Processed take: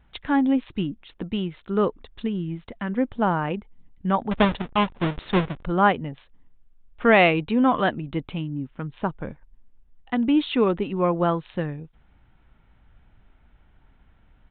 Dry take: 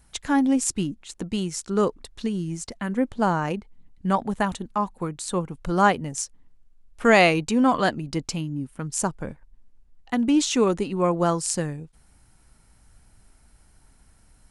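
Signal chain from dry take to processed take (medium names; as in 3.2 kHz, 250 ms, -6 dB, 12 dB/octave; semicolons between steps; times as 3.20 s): 4.31–5.63 s: square wave that keeps the level; resampled via 8 kHz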